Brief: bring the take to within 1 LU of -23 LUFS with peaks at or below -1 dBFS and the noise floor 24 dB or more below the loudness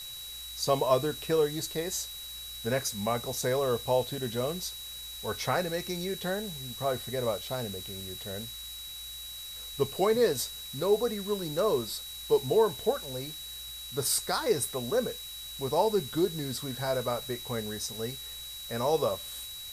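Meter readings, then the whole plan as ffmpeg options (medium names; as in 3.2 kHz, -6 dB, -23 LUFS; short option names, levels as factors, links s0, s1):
steady tone 3.9 kHz; tone level -41 dBFS; noise floor -42 dBFS; noise floor target -55 dBFS; loudness -31.0 LUFS; peak level -12.0 dBFS; loudness target -23.0 LUFS
-> -af "bandreject=f=3900:w=30"
-af "afftdn=nr=13:nf=-42"
-af "volume=2.51"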